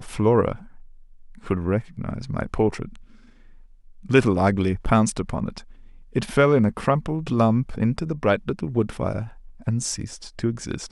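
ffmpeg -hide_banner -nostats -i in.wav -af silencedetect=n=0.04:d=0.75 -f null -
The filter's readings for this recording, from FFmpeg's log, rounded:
silence_start: 0.55
silence_end: 1.47 | silence_duration: 0.91
silence_start: 2.85
silence_end: 4.10 | silence_duration: 1.25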